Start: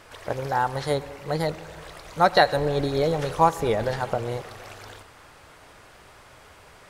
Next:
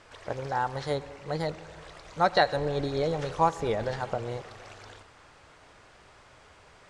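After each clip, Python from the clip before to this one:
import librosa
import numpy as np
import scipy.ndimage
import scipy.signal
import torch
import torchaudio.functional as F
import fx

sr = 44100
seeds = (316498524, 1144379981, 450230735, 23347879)

y = scipy.signal.sosfilt(scipy.signal.butter(4, 8300.0, 'lowpass', fs=sr, output='sos'), x)
y = y * librosa.db_to_amplitude(-5.0)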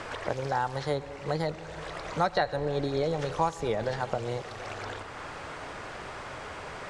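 y = fx.band_squash(x, sr, depth_pct=70)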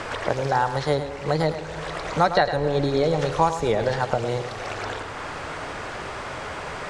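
y = x + 10.0 ** (-10.5 / 20.0) * np.pad(x, (int(106 * sr / 1000.0), 0))[:len(x)]
y = y * librosa.db_to_amplitude(7.0)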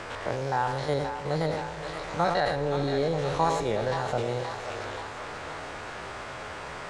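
y = fx.spec_steps(x, sr, hold_ms=50)
y = fx.echo_thinned(y, sr, ms=526, feedback_pct=68, hz=550.0, wet_db=-8)
y = fx.sustainer(y, sr, db_per_s=43.0)
y = y * librosa.db_to_amplitude(-5.0)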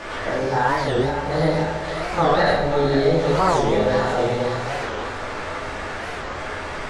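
y = fx.room_shoebox(x, sr, seeds[0], volume_m3=250.0, walls='mixed', distance_m=2.5)
y = fx.record_warp(y, sr, rpm=45.0, depth_cents=250.0)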